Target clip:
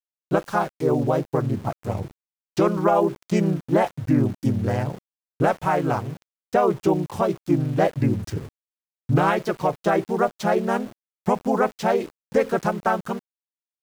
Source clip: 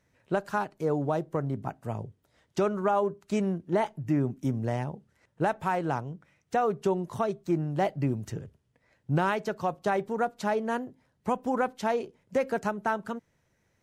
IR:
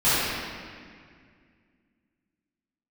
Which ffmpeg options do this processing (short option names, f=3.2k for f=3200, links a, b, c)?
-filter_complex "[0:a]asplit=2[a][b];[b]asetrate=37084,aresample=44100,atempo=1.18921,volume=0dB[c];[a][c]amix=inputs=2:normalize=0,aeval=exprs='val(0)*gte(abs(val(0)),0.0075)':c=same,volume=4dB"